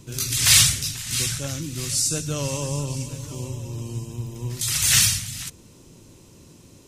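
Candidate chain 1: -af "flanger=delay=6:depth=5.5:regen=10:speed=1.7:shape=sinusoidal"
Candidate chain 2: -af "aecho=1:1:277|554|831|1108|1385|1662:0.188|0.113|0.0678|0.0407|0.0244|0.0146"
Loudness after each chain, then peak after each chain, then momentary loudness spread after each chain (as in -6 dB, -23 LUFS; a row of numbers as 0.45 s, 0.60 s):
-24.0 LUFS, -20.5 LUFS; -3.5 dBFS, -1.0 dBFS; 18 LU, 18 LU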